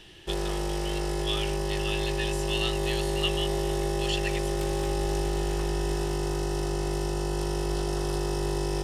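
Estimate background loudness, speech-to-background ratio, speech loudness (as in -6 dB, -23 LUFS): -29.5 LUFS, -5.0 dB, -34.5 LUFS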